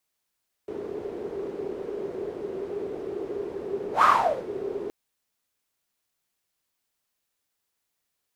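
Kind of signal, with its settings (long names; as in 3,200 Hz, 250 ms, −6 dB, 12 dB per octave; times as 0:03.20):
pass-by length 4.22 s, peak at 0:03.35, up 0.12 s, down 0.48 s, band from 400 Hz, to 1,200 Hz, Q 9.1, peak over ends 16 dB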